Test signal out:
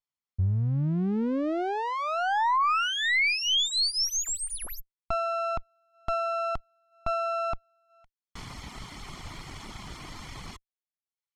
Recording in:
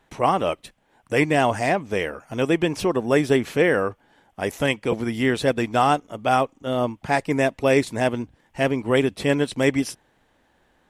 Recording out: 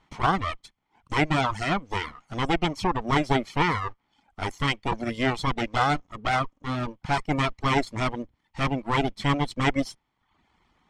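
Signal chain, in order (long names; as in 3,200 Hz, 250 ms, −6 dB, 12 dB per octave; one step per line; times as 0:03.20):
lower of the sound and its delayed copy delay 0.94 ms
low-pass filter 6,000 Hz 12 dB per octave
reverb reduction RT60 0.65 s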